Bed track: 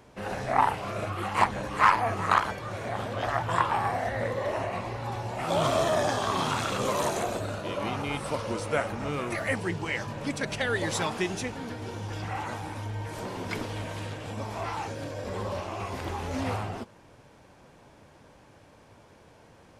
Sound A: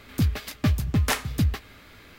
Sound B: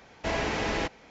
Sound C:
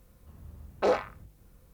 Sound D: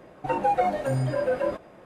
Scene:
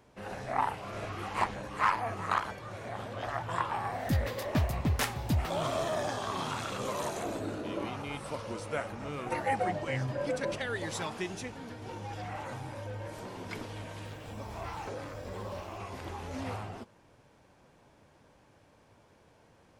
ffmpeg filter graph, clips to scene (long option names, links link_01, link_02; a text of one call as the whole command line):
ffmpeg -i bed.wav -i cue0.wav -i cue1.wav -i cue2.wav -i cue3.wav -filter_complex "[2:a]asplit=2[link_01][link_02];[4:a]asplit=2[link_03][link_04];[0:a]volume=-7dB[link_05];[link_02]bandpass=frequency=310:width_type=q:width=3:csg=0[link_06];[link_03]lowpass=5500[link_07];[link_04]asoftclip=type=tanh:threshold=-25dB[link_08];[3:a]acompressor=threshold=-40dB:ratio=6:attack=3.2:release=140:knee=1:detection=peak[link_09];[link_01]atrim=end=1.1,asetpts=PTS-STARTPTS,volume=-16.5dB,afade=type=in:duration=0.004:curve=hsin,afade=type=out:start_time=1.096:duration=0.004:curve=hsin,adelay=680[link_10];[1:a]atrim=end=2.18,asetpts=PTS-STARTPTS,volume=-6.5dB,afade=type=in:duration=0.004:curve=hsin,afade=type=out:start_time=2.176:duration=0.004:curve=hsin,adelay=3910[link_11];[link_06]atrim=end=1.1,asetpts=PTS-STARTPTS,volume=-1dB,afade=type=in:duration=0.004:curve=hsin,afade=type=out:start_time=1.096:duration=0.004:curve=hsin,adelay=6990[link_12];[link_07]atrim=end=1.85,asetpts=PTS-STARTPTS,volume=-8.5dB,afade=type=in:duration=0.004:curve=hsin,afade=type=out:start_time=1.846:duration=0.004:curve=hsin,adelay=9020[link_13];[link_08]atrim=end=1.85,asetpts=PTS-STARTPTS,volume=-15.5dB,afade=type=in:duration=0.004:curve=hsin,afade=type=out:start_time=1.846:duration=0.004:curve=hsin,adelay=11600[link_14];[link_09]atrim=end=1.73,asetpts=PTS-STARTPTS,volume=-0.5dB,afade=type=in:duration=0.004:curve=hsin,afade=type=out:start_time=1.726:duration=0.004:curve=hsin,adelay=14050[link_15];[link_05][link_10][link_11][link_12][link_13][link_14][link_15]amix=inputs=7:normalize=0" out.wav